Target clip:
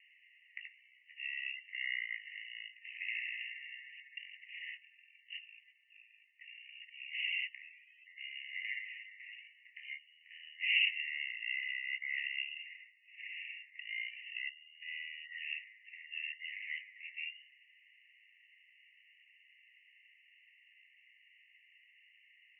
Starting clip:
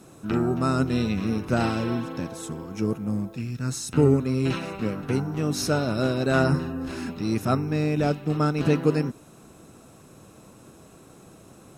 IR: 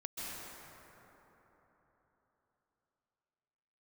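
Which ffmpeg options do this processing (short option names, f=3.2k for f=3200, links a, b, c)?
-af "asetrate=22976,aresample=44100,asuperpass=centerf=2300:order=20:qfactor=2.1,volume=3.5dB"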